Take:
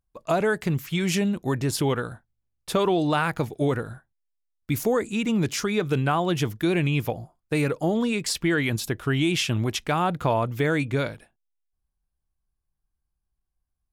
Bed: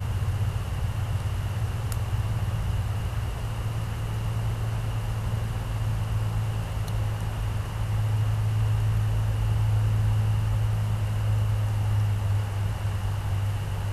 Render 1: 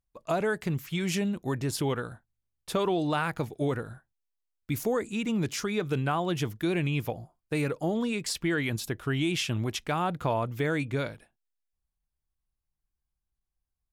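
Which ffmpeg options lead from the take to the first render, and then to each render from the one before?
-af "volume=-5dB"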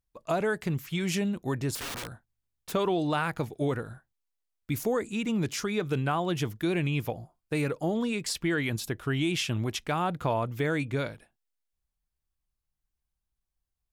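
-filter_complex "[0:a]asettb=1/sr,asplit=3[a][b][c];[a]atrim=end=1.754[d];[b]atrim=start=1.75:end=2.72,asetpts=PTS-STARTPTS,afade=t=in:d=0.004:c=qsin,afade=t=out:st=0.966:d=0.004:c=qsin,aeval=exprs='(mod(37.6*val(0)+1,2)-1)/37.6':c=same[e];[c]atrim=start=2.716[f];[d][e]acrossfade=d=0.004:c1=hsin:c2=qsin[g];[g][f]acrossfade=d=0.004:c1=qsin:c2=hsin"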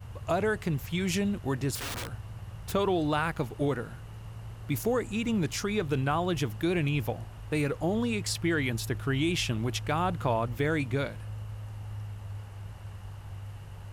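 -filter_complex "[1:a]volume=-14.5dB[a];[0:a][a]amix=inputs=2:normalize=0"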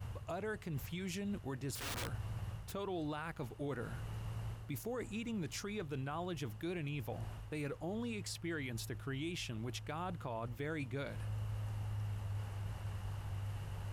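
-af "areverse,acompressor=threshold=-37dB:ratio=4,areverse,alimiter=level_in=8dB:limit=-24dB:level=0:latency=1:release=206,volume=-8dB"

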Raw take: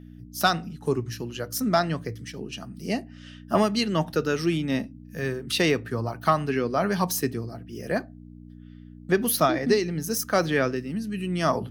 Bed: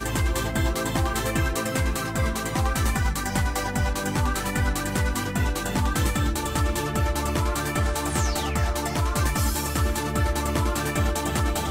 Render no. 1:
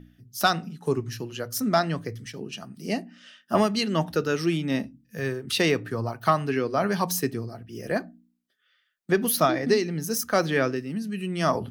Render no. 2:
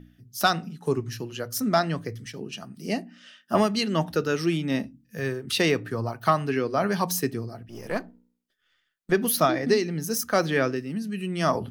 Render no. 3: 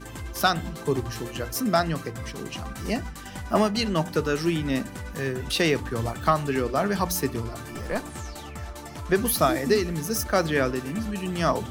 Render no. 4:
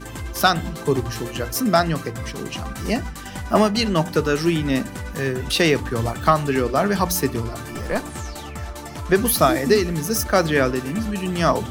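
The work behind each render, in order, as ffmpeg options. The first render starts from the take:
-af "bandreject=f=60:t=h:w=4,bandreject=f=120:t=h:w=4,bandreject=f=180:t=h:w=4,bandreject=f=240:t=h:w=4,bandreject=f=300:t=h:w=4"
-filter_complex "[0:a]asettb=1/sr,asplit=3[a][b][c];[a]atrim=end=7.684[d];[b]atrim=start=7.68:end=9.12,asetpts=PTS-STARTPTS,afade=t=in:d=0.004:c=qsin,afade=t=out:st=1.436:d=0.004:c=qsin,aeval=exprs='if(lt(val(0),0),0.447*val(0),val(0))':c=same[e];[c]atrim=start=9.116[f];[d][e]acrossfade=d=0.004:c1=hsin:c2=qsin[g];[g][f]acrossfade=d=0.004:c1=qsin:c2=hsin"
-filter_complex "[1:a]volume=-12.5dB[a];[0:a][a]amix=inputs=2:normalize=0"
-af "volume=5dB"

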